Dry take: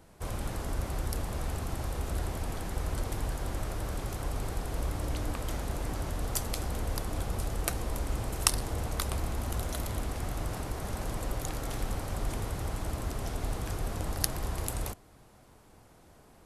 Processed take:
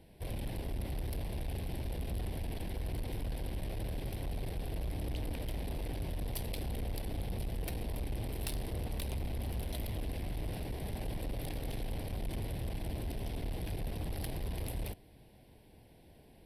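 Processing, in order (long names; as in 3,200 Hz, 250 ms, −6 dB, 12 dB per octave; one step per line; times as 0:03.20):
phaser with its sweep stopped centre 3,000 Hz, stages 4
tube saturation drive 33 dB, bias 0.35
level +1 dB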